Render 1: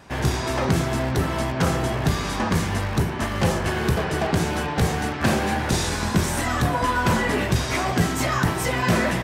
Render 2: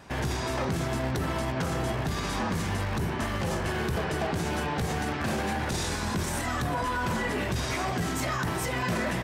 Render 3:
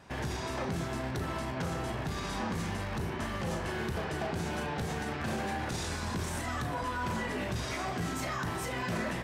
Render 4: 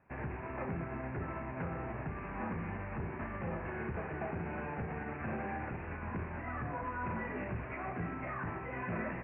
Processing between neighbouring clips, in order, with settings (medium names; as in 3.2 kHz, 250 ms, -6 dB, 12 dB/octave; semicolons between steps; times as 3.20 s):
peak limiter -19 dBFS, peak gain reduction 10 dB; trim -2 dB
treble shelf 11 kHz -4.5 dB; on a send: flutter echo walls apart 6.1 m, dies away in 0.22 s; on the sum: trim -5.5 dB
steep low-pass 2.6 kHz 96 dB/octave; upward expansion 1.5:1, over -51 dBFS; trim -3 dB